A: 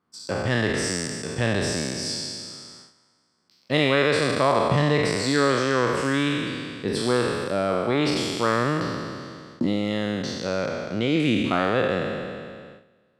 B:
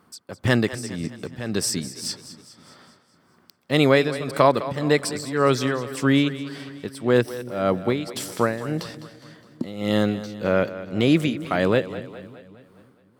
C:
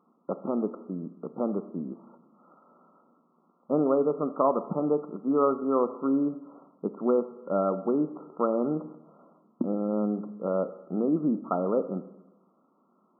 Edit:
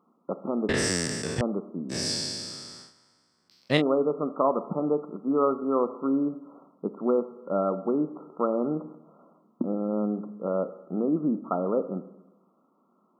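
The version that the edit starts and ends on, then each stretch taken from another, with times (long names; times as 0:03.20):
C
0:00.69–0:01.41: punch in from A
0:01.92–0:03.79: punch in from A, crossfade 0.06 s
not used: B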